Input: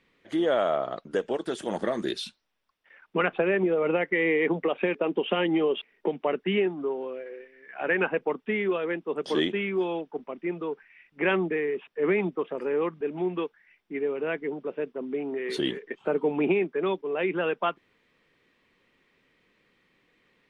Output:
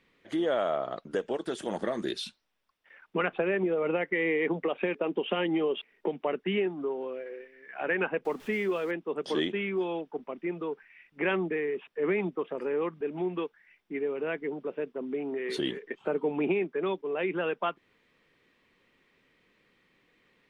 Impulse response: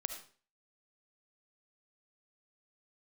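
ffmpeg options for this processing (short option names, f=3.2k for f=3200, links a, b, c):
-filter_complex "[0:a]asettb=1/sr,asplit=3[a][b][c];[a]atrim=end=8.254[d];[b]atrim=start=8.25:end=8.91,asetpts=PTS-STARTPTS,afade=t=in:d=0.004:c=qsin,afade=t=out:st=0.656:d=0.004:c=qsin,aeval=exprs='val(0)+0.5*0.00668*sgn(val(0))':c=same[e];[c]atrim=start=8.906[f];[d][e]acrossfade=d=0.004:c1=hsin:c2=qsin[g];[g][f]acrossfade=d=0.004:c1=qsin:c2=hsin,asplit=2[h][i];[i]acompressor=threshold=-32dB:ratio=6,volume=-2dB[j];[h][j]amix=inputs=2:normalize=0,volume=-5.5dB"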